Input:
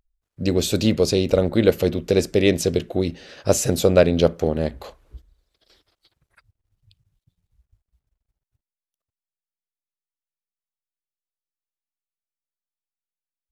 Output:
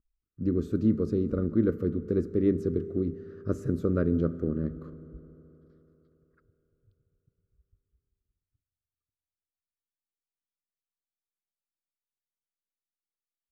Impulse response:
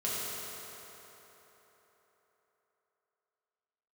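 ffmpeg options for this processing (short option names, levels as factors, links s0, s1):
-filter_complex "[0:a]firequalizer=gain_entry='entry(140,0);entry(300,4);entry(810,-29);entry(1200,0);entry(2500,-27)':delay=0.05:min_phase=1,asplit=2[s0][s1];[1:a]atrim=start_sample=2205,lowshelf=f=450:g=6.5[s2];[s1][s2]afir=irnorm=-1:irlink=0,volume=0.0631[s3];[s0][s3]amix=inputs=2:normalize=0,volume=0.422"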